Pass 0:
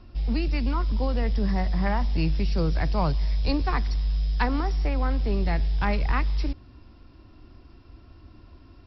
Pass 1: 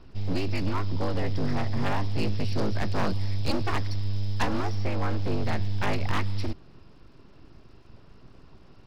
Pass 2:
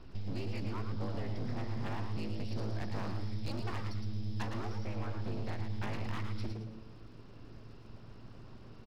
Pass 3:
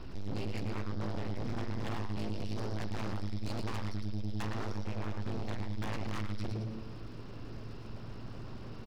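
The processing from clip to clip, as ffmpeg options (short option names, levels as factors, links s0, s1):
-af "aeval=exprs='abs(val(0))':c=same"
-filter_complex "[0:a]acompressor=threshold=0.0282:ratio=10,asplit=2[s0][s1];[s1]asplit=4[s2][s3][s4][s5];[s2]adelay=112,afreqshift=110,volume=0.473[s6];[s3]adelay=224,afreqshift=220,volume=0.157[s7];[s4]adelay=336,afreqshift=330,volume=0.0513[s8];[s5]adelay=448,afreqshift=440,volume=0.017[s9];[s6][s7][s8][s9]amix=inputs=4:normalize=0[s10];[s0][s10]amix=inputs=2:normalize=0,volume=0.794"
-af "asoftclip=type=tanh:threshold=0.0112,volume=2.51"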